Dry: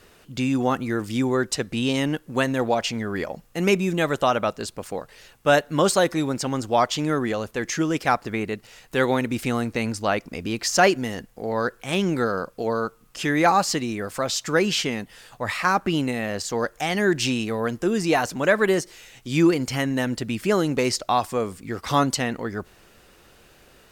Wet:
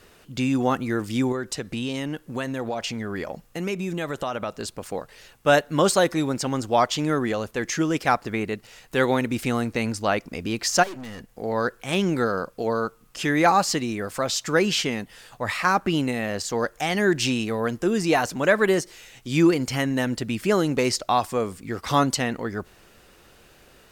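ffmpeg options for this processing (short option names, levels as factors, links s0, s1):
-filter_complex "[0:a]asettb=1/sr,asplit=3[s0][s1][s2];[s0]atrim=end=1.324[s3];[s1]atrim=start=1.32:end=4.87,asetpts=PTS-STARTPTS,afade=t=in:d=0.004:c=qsin,afade=t=out:st=3.546:d=0.004:c=qsin,acompressor=threshold=0.0501:ratio=3:attack=3.2:release=140:knee=1:detection=peak[s4];[s2]atrim=start=4.866[s5];[s3][s4]acrossfade=d=0.004:c1=hsin:c2=qsin[s6];[s6][s5]acrossfade=d=0.004:c1=qsin:c2=hsin,asplit=3[s7][s8][s9];[s7]afade=t=out:st=10.82:d=0.02[s10];[s8]aeval=exprs='(tanh(50.1*val(0)+0.45)-tanh(0.45))/50.1':c=same,afade=t=in:st=10.82:d=0.02,afade=t=out:st=11.29:d=0.02[s11];[s9]afade=t=in:st=11.29:d=0.02[s12];[s10][s11][s12]amix=inputs=3:normalize=0"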